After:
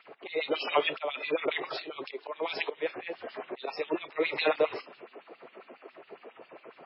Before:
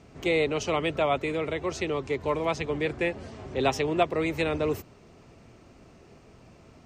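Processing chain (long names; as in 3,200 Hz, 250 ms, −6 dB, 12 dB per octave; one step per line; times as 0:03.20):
low-pass that shuts in the quiet parts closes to 2,300 Hz, open at −21 dBFS
volume swells 310 ms
in parallel at 0 dB: downward compressor 6 to 1, threshold −42 dBFS, peak gain reduction 18.5 dB
on the sum: transient designer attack −5 dB, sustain +3 dB
auto-filter high-pass sine 7.3 Hz 380–3,900 Hz
MP3 16 kbit/s 12,000 Hz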